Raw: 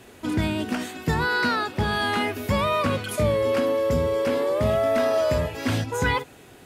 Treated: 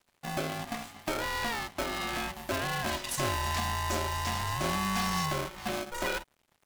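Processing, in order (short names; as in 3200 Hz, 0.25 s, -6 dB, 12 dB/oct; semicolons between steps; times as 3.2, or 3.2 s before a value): 2.87–5.26 bell 6200 Hz +15 dB 1.7 oct; crossover distortion -44 dBFS; polarity switched at an audio rate 470 Hz; gain -9 dB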